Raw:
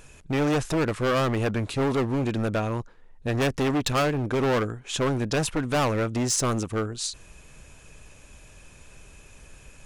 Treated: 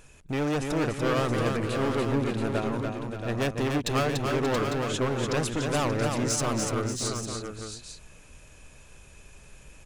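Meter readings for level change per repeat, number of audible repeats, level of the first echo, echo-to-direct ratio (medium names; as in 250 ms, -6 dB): no regular repeats, 4, -4.5 dB, -1.5 dB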